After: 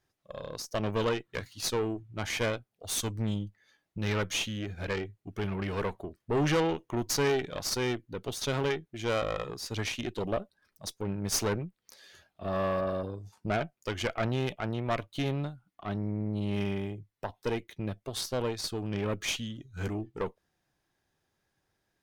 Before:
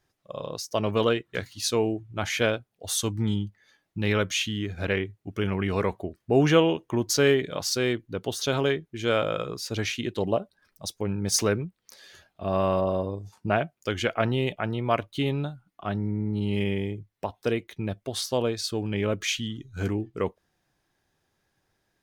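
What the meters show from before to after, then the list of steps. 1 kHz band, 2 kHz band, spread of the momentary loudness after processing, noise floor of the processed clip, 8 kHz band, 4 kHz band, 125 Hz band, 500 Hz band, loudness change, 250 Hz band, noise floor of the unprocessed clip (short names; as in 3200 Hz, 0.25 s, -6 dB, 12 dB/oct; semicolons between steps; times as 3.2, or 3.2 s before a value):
-4.5 dB, -5.5 dB, 10 LU, -81 dBFS, -4.5 dB, -5.0 dB, -4.5 dB, -6.0 dB, -5.5 dB, -6.0 dB, -77 dBFS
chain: tube stage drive 22 dB, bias 0.75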